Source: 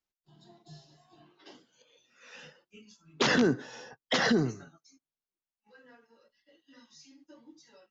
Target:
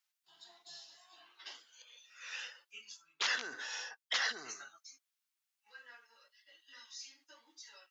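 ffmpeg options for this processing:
-af "areverse,acompressor=threshold=-36dB:ratio=4,areverse,highpass=1.4k,volume=7.5dB"

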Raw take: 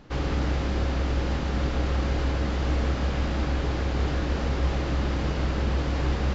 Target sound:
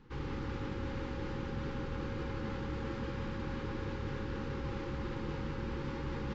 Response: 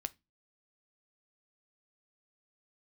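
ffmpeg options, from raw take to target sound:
-filter_complex "[0:a]aecho=1:1:177|354|531|708|885|1062|1239|1416:0.596|0.334|0.187|0.105|0.0586|0.0328|0.0184|0.0103[a];[1:a]atrim=start_sample=2205[b];[a][b]afir=irnorm=-1:irlink=0,areverse,acompressor=threshold=-27dB:ratio=6,areverse,asuperstop=centerf=650:order=20:qfactor=3,highshelf=f=3.9k:g=-10,volume=-6.5dB"

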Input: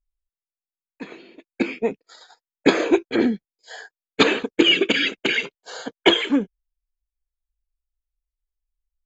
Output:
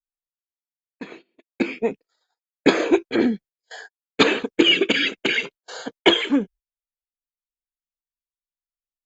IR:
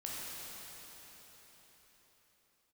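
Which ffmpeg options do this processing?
-af "agate=range=-25dB:threshold=-41dB:ratio=16:detection=peak"

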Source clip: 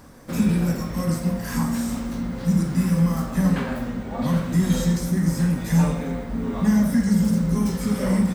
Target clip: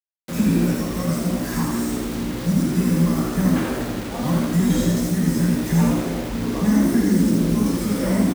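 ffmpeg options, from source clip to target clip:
-filter_complex "[0:a]acrusher=bits=5:mix=0:aa=0.000001,asplit=7[a][b][c][d][e][f][g];[b]adelay=82,afreqshift=65,volume=-4.5dB[h];[c]adelay=164,afreqshift=130,volume=-10.7dB[i];[d]adelay=246,afreqshift=195,volume=-16.9dB[j];[e]adelay=328,afreqshift=260,volume=-23.1dB[k];[f]adelay=410,afreqshift=325,volume=-29.3dB[l];[g]adelay=492,afreqshift=390,volume=-35.5dB[m];[a][h][i][j][k][l][m]amix=inputs=7:normalize=0"

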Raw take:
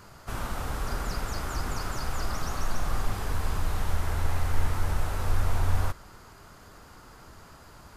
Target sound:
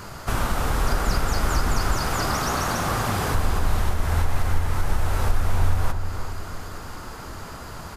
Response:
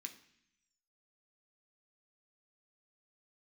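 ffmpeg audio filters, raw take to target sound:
-filter_complex "[0:a]asettb=1/sr,asplit=3[a][b][c];[a]atrim=end=1.984[d];[b]atrim=start=1.98:end=3.35,asetpts=PTS-STARTPTS,afade=t=in:d=0.004:c=qsin,afade=t=out:st=1.366:d=0.004:c=qsin,highpass=94[e];[c]atrim=start=3.346[f];[d][e]acrossfade=d=0.004:c1=hsin:c2=qsin[g];[g][f]acrossfade=d=0.004:c1=qsin:c2=hsin,asplit=2[h][i];[i]acompressor=threshold=-36dB:ratio=6,volume=-1.5dB[j];[h][j]amix=inputs=2:normalize=0,alimiter=limit=-18.5dB:level=0:latency=1:release=355,asplit=2[k][l];[l]adelay=347,lowpass=f=2k:p=1,volume=-8dB,asplit=2[m][n];[n]adelay=347,lowpass=f=2k:p=1,volume=0.5,asplit=2[o][p];[p]adelay=347,lowpass=f=2k:p=1,volume=0.5,asplit=2[q][r];[r]adelay=347,lowpass=f=2k:p=1,volume=0.5,asplit=2[s][t];[t]adelay=347,lowpass=f=2k:p=1,volume=0.5,asplit=2[u][v];[v]adelay=347,lowpass=f=2k:p=1,volume=0.5[w];[k][m][o][q][s][u][w]amix=inputs=7:normalize=0,volume=7dB"

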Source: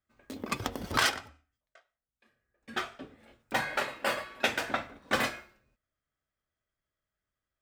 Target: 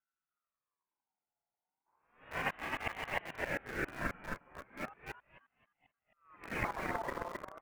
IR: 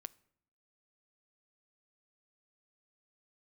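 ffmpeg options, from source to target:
-filter_complex "[0:a]areverse,lowpass=f=1.2k:w=0.5412,lowpass=f=1.2k:w=1.3066,equalizer=f=78:t=o:w=1:g=6.5,aecho=1:1:265|530|795|1060:0.668|0.167|0.0418|0.0104,asplit=2[a][b];[b]acrusher=bits=5:mix=0:aa=0.000001,volume=-6.5dB[c];[a][c]amix=inputs=2:normalize=0,aeval=exprs='val(0)*sin(2*PI*1100*n/s+1100*0.3/0.35*sin(2*PI*0.35*n/s))':c=same,volume=-5.5dB"

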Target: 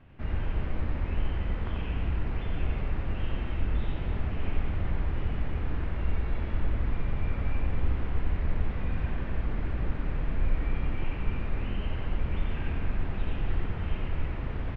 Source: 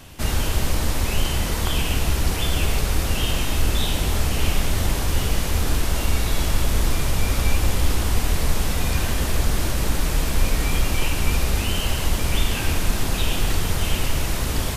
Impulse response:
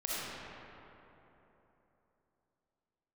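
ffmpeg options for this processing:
-filter_complex "[0:a]lowpass=f=2.2k:w=0.5412,lowpass=f=2.2k:w=1.3066,equalizer=f=950:w=0.41:g=-5.5,asplit=2[a][b];[b]aecho=0:1:90.38|288.6:0.708|0.316[c];[a][c]amix=inputs=2:normalize=0,volume=-9dB"

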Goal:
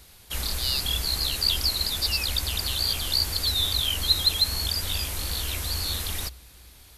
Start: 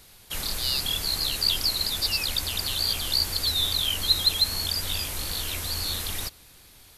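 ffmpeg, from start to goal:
-af "equalizer=f=62:t=o:w=0.35:g=15"

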